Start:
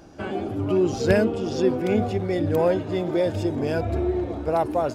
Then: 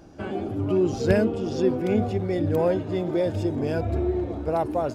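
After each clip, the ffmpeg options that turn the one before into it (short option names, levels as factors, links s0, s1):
-af "lowshelf=f=490:g=4.5,volume=0.631"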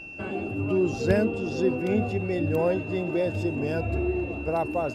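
-af "aeval=exprs='val(0)+0.0141*sin(2*PI*2700*n/s)':c=same,volume=0.794"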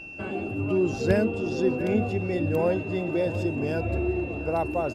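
-filter_complex "[0:a]asplit=2[s0][s1];[s1]adelay=699.7,volume=0.224,highshelf=f=4000:g=-15.7[s2];[s0][s2]amix=inputs=2:normalize=0"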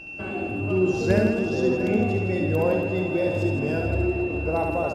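-af "aecho=1:1:70|161|279.3|433.1|633:0.631|0.398|0.251|0.158|0.1"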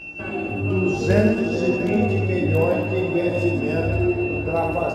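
-af "flanger=delay=17:depth=3.4:speed=0.58,volume=1.88"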